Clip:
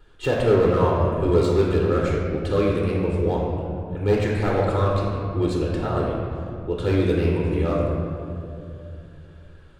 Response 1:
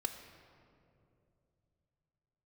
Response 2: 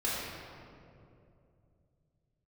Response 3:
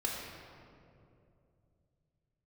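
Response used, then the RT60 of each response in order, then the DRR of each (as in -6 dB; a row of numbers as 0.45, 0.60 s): 3; 2.8, 2.6, 2.6 s; 6.0, -9.0, -3.5 dB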